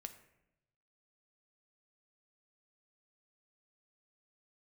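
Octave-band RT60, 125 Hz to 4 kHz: 1.3, 1.0, 0.95, 0.80, 0.80, 0.55 s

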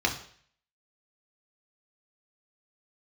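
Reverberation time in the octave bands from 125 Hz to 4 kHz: 0.60, 0.50, 0.55, 0.55, 0.60, 0.55 s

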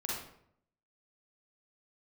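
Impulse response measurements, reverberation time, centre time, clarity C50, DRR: 0.70 s, 62 ms, -1.5 dB, -5.0 dB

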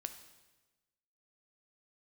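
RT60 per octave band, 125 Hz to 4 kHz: 1.3, 1.3, 1.2, 1.1, 1.1, 1.1 s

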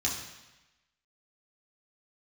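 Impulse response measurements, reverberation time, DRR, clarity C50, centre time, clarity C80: 1.0 s, -4.0 dB, 4.5 dB, 44 ms, 6.5 dB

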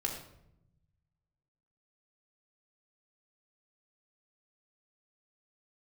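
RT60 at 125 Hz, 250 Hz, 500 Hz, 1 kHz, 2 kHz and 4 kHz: 1.9, 1.4, 0.90, 0.70, 0.60, 0.50 s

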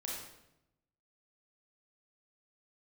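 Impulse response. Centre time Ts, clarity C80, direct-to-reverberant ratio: 63 ms, 3.5 dB, -4.0 dB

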